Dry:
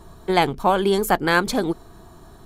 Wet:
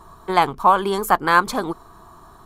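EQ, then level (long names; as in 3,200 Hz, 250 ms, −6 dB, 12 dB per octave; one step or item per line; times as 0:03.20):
parametric band 1,100 Hz +14.5 dB 0.8 octaves
high-shelf EQ 6,000 Hz +4.5 dB
−4.5 dB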